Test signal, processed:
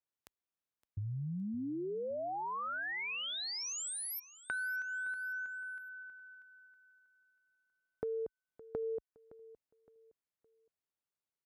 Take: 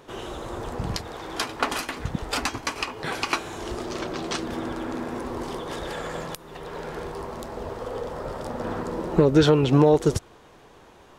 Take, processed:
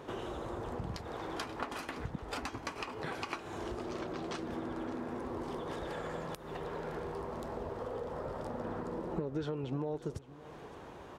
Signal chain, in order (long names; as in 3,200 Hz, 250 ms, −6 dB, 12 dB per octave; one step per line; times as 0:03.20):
high-pass filter 44 Hz
high-shelf EQ 2,500 Hz −9 dB
downward compressor 4 to 1, threshold −41 dBFS
on a send: repeating echo 565 ms, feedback 34%, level −18 dB
on the sum: level +2.5 dB